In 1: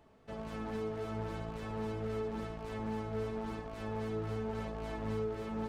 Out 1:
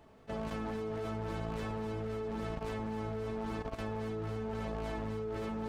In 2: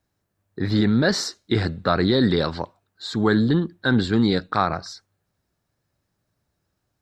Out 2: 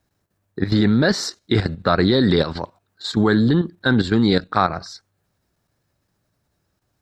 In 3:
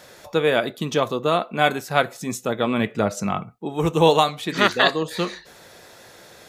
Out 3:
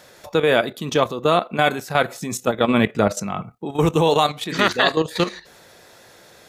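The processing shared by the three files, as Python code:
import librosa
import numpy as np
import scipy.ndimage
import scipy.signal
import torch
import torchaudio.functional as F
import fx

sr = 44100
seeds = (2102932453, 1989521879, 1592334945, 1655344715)

y = fx.level_steps(x, sr, step_db=11)
y = F.gain(torch.from_numpy(y), 6.5).numpy()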